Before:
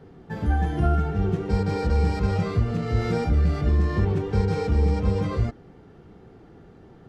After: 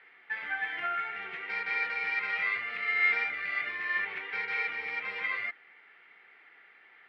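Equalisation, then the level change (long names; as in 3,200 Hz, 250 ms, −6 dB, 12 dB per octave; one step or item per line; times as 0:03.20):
high-pass with resonance 2,100 Hz, resonance Q 6
high-frequency loss of the air 440 metres
+6.5 dB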